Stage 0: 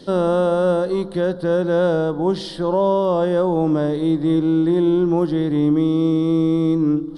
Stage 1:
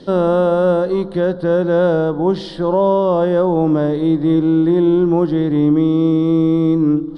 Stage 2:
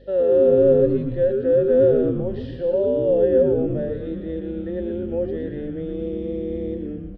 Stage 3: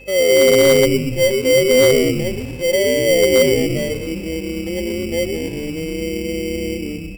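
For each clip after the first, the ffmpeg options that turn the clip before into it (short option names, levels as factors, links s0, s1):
-af "aemphasis=mode=reproduction:type=50fm,volume=1.41"
-filter_complex "[0:a]asplit=3[s0][s1][s2];[s0]bandpass=f=530:t=q:w=8,volume=1[s3];[s1]bandpass=f=1840:t=q:w=8,volume=0.501[s4];[s2]bandpass=f=2480:t=q:w=8,volume=0.355[s5];[s3][s4][s5]amix=inputs=3:normalize=0,aeval=exprs='val(0)+0.00355*(sin(2*PI*50*n/s)+sin(2*PI*2*50*n/s)/2+sin(2*PI*3*50*n/s)/3+sin(2*PI*4*50*n/s)/4+sin(2*PI*5*50*n/s)/5)':c=same,asplit=2[s6][s7];[s7]asplit=8[s8][s9][s10][s11][s12][s13][s14][s15];[s8]adelay=117,afreqshift=-130,volume=0.531[s16];[s9]adelay=234,afreqshift=-260,volume=0.32[s17];[s10]adelay=351,afreqshift=-390,volume=0.191[s18];[s11]adelay=468,afreqshift=-520,volume=0.115[s19];[s12]adelay=585,afreqshift=-650,volume=0.0692[s20];[s13]adelay=702,afreqshift=-780,volume=0.0412[s21];[s14]adelay=819,afreqshift=-910,volume=0.0248[s22];[s15]adelay=936,afreqshift=-1040,volume=0.0148[s23];[s16][s17][s18][s19][s20][s21][s22][s23]amix=inputs=8:normalize=0[s24];[s6][s24]amix=inputs=2:normalize=0"
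-af "acrusher=samples=17:mix=1:aa=0.000001,asoftclip=type=hard:threshold=0.299,aeval=exprs='val(0)+0.00562*sin(2*PI*2600*n/s)':c=same,volume=1.58"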